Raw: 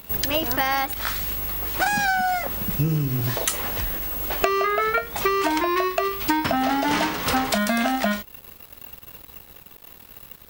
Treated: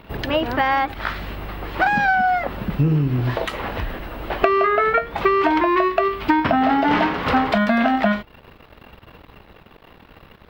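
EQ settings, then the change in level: distance through air 380 m; bass shelf 150 Hz -3.5 dB; +6.5 dB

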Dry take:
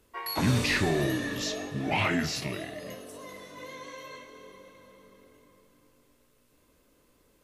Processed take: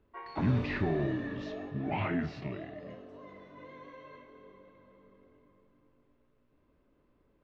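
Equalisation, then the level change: distance through air 97 m; tape spacing loss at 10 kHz 35 dB; band-stop 490 Hz, Q 12; -2.0 dB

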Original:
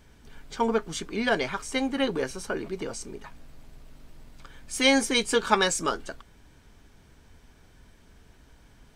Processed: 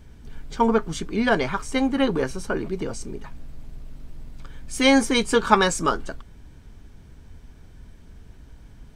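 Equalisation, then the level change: dynamic bell 1.1 kHz, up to +6 dB, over -40 dBFS, Q 1.3; bass shelf 300 Hz +11 dB; 0.0 dB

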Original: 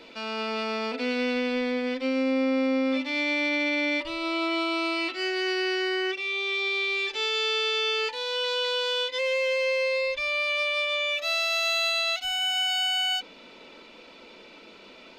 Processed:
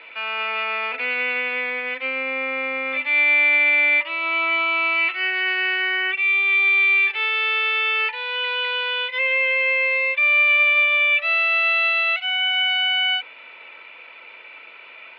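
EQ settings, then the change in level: high-pass 860 Hz 12 dB/octave; resonant low-pass 2.4 kHz, resonance Q 2.8; distance through air 250 m; +6.5 dB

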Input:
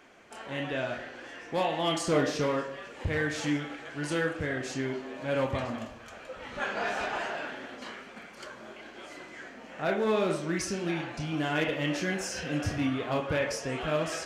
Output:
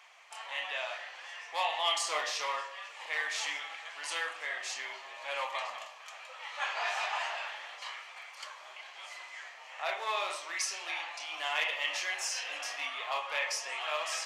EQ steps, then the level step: high-pass 890 Hz 24 dB/octave; peaking EQ 1.5 kHz -12.5 dB 0.34 oct; treble shelf 7.4 kHz -5.5 dB; +4.5 dB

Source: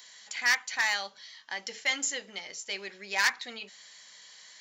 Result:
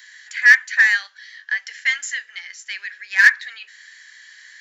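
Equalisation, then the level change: resonant high-pass 1.7 kHz, resonance Q 8.4; 0.0 dB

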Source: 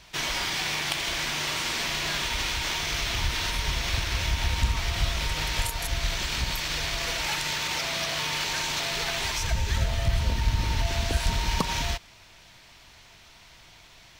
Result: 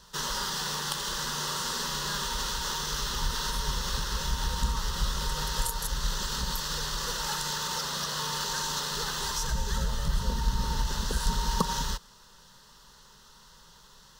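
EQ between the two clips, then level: static phaser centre 460 Hz, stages 8; +1.5 dB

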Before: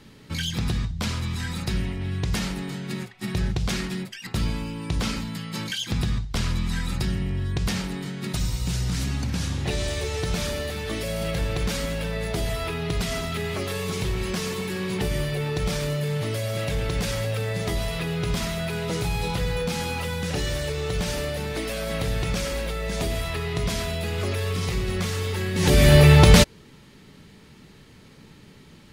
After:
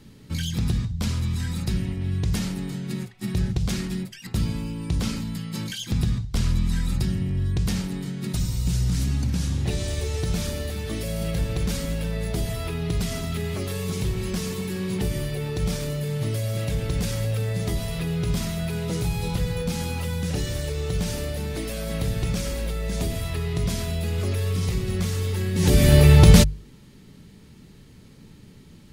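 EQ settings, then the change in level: bass shelf 380 Hz +12 dB; treble shelf 4.6 kHz +9.5 dB; hum notches 50/100/150 Hz; -7.5 dB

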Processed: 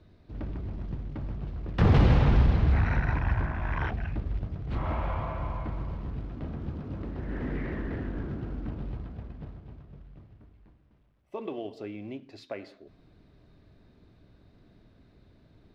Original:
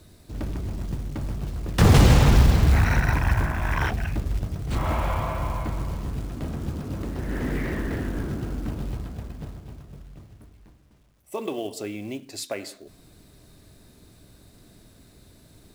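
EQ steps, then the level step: distance through air 290 m; -5.0 dB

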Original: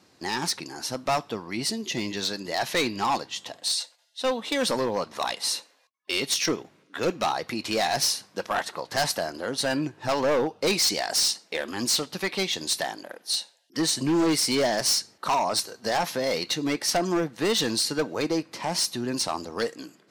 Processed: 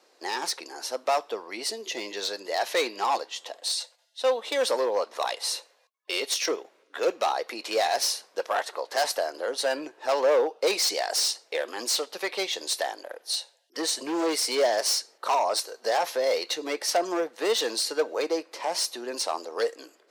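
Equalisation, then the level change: ladder high-pass 390 Hz, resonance 40%; +6.0 dB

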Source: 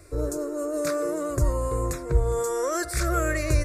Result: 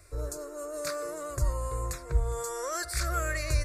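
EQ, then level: dynamic bell 4.5 kHz, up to +6 dB, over -57 dBFS, Q 5.5; peaking EQ 270 Hz -13 dB 1.8 oct; -3.0 dB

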